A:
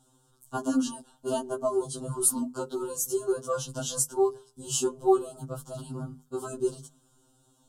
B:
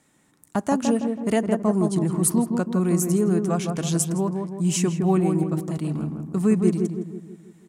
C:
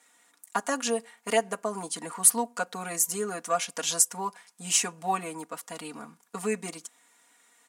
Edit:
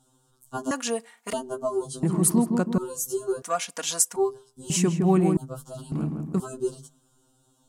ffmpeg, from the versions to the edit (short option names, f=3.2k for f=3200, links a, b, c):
-filter_complex "[2:a]asplit=2[a][b];[1:a]asplit=3[c][d][e];[0:a]asplit=6[f][g][h][i][j][k];[f]atrim=end=0.712[l];[a]atrim=start=0.708:end=1.332[m];[g]atrim=start=1.328:end=2.032[n];[c]atrim=start=2.028:end=2.782[o];[h]atrim=start=2.778:end=3.422[p];[b]atrim=start=3.418:end=4.162[q];[i]atrim=start=4.158:end=4.702[r];[d]atrim=start=4.698:end=5.372[s];[j]atrim=start=5.368:end=5.922[t];[e]atrim=start=5.918:end=6.402[u];[k]atrim=start=6.398[v];[l][m]acrossfade=d=0.004:c1=hsin:c2=hsin[w];[w][n]acrossfade=d=0.004:c1=hsin:c2=hsin[x];[x][o]acrossfade=d=0.004:c1=hsin:c2=hsin[y];[y][p]acrossfade=d=0.004:c1=hsin:c2=hsin[z];[z][q]acrossfade=d=0.004:c1=hsin:c2=hsin[aa];[aa][r]acrossfade=d=0.004:c1=hsin:c2=hsin[ab];[ab][s]acrossfade=d=0.004:c1=hsin:c2=hsin[ac];[ac][t]acrossfade=d=0.004:c1=hsin:c2=hsin[ad];[ad][u]acrossfade=d=0.004:c1=hsin:c2=hsin[ae];[ae][v]acrossfade=d=0.004:c1=hsin:c2=hsin"